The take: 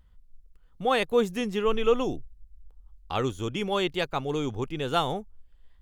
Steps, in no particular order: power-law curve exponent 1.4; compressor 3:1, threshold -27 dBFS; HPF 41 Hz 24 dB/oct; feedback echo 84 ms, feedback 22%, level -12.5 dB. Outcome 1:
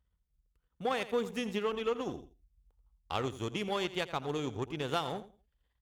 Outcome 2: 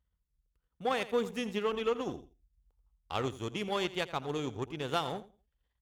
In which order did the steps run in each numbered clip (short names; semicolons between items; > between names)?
feedback echo > compressor > power-law curve > HPF; feedback echo > power-law curve > compressor > HPF